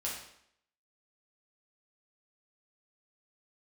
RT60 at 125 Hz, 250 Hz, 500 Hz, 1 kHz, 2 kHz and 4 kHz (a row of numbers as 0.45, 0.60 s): 0.60, 0.75, 0.70, 0.70, 0.70, 0.65 s